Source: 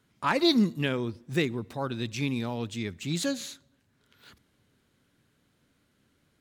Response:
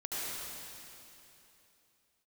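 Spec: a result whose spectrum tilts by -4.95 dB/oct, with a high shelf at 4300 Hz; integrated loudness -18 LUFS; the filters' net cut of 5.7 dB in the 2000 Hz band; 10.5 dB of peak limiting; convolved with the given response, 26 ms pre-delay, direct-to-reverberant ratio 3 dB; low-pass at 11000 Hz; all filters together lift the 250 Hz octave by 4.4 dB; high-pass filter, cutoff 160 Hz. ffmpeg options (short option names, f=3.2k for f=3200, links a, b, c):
-filter_complex "[0:a]highpass=160,lowpass=11k,equalizer=f=250:t=o:g=6.5,equalizer=f=2k:t=o:g=-9,highshelf=f=4.3k:g=5.5,alimiter=limit=-20dB:level=0:latency=1,asplit=2[a][b];[1:a]atrim=start_sample=2205,adelay=26[c];[b][c]afir=irnorm=-1:irlink=0,volume=-7.5dB[d];[a][d]amix=inputs=2:normalize=0,volume=11dB"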